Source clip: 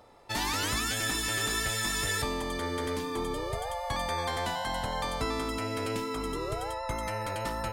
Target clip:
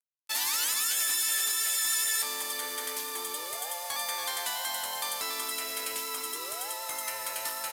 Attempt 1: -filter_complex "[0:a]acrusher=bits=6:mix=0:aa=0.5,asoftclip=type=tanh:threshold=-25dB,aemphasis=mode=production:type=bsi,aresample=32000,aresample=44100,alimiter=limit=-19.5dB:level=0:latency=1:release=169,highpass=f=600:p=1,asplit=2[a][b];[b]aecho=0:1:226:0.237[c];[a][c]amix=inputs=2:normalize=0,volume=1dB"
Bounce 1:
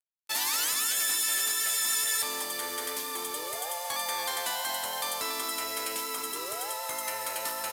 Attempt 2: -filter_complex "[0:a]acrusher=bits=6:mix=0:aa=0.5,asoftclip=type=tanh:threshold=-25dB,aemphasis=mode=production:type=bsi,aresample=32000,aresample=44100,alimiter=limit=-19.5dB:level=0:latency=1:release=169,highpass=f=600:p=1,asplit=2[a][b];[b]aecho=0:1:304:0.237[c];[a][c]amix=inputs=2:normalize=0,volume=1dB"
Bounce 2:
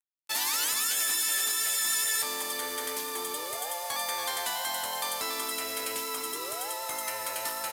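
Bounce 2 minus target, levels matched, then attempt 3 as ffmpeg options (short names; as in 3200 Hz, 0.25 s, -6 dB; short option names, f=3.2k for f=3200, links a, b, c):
500 Hz band +4.0 dB
-filter_complex "[0:a]acrusher=bits=6:mix=0:aa=0.5,asoftclip=type=tanh:threshold=-25dB,aemphasis=mode=production:type=bsi,aresample=32000,aresample=44100,alimiter=limit=-19.5dB:level=0:latency=1:release=169,highpass=f=1.2k:p=1,asplit=2[a][b];[b]aecho=0:1:304:0.237[c];[a][c]amix=inputs=2:normalize=0,volume=1dB"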